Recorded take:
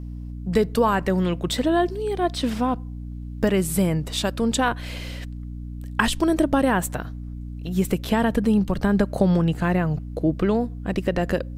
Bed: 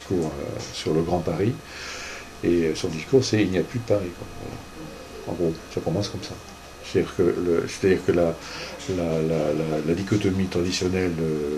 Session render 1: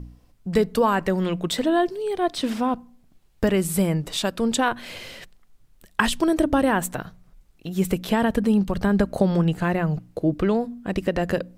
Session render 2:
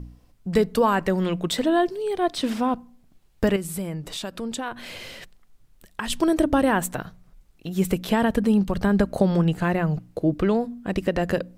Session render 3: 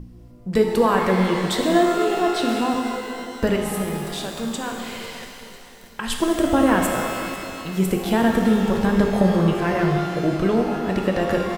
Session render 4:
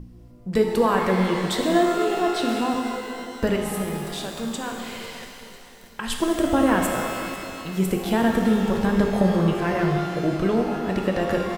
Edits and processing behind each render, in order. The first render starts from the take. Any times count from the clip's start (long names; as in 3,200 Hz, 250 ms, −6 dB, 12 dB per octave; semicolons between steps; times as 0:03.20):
hum removal 60 Hz, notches 5
0:03.56–0:06.10: downward compressor 2 to 1, threshold −33 dBFS
repeating echo 498 ms, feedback 56%, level −19 dB; reverb with rising layers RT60 2.4 s, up +12 semitones, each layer −8 dB, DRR 1.5 dB
level −2 dB